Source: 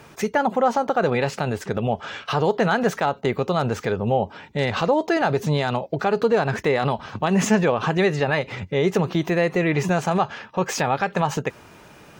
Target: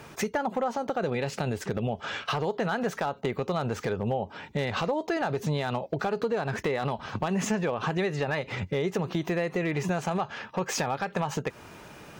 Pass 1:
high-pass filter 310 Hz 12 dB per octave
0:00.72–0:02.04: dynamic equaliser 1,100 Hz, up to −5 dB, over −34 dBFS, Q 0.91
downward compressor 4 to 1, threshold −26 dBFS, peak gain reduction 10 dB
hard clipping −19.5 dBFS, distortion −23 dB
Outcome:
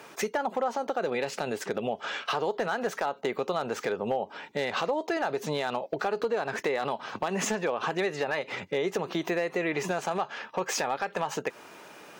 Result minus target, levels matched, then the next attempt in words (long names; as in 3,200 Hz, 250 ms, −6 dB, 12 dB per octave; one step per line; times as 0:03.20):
250 Hz band −3.5 dB
0:00.72–0:02.04: dynamic equaliser 1,100 Hz, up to −5 dB, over −34 dBFS, Q 0.91
downward compressor 4 to 1, threshold −26 dBFS, peak gain reduction 11 dB
hard clipping −19.5 dBFS, distortion −24 dB